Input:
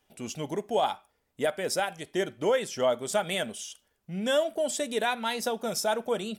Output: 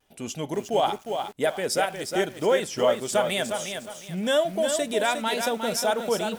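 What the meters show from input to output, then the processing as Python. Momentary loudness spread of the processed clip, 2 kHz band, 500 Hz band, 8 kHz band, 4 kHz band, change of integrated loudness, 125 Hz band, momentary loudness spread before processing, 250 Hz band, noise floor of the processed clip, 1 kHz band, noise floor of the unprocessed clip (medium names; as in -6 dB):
8 LU, +4.0 dB, +4.0 dB, +4.0 dB, +4.0 dB, +3.5 dB, +3.5 dB, 11 LU, +3.5 dB, -47 dBFS, +4.0 dB, -75 dBFS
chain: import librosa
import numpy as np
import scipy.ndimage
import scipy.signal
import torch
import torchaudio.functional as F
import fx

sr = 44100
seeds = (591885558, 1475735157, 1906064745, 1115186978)

y = fx.vibrato(x, sr, rate_hz=0.94, depth_cents=42.0)
y = fx.echo_crushed(y, sr, ms=358, feedback_pct=35, bits=8, wet_db=-6)
y = y * librosa.db_to_amplitude(3.0)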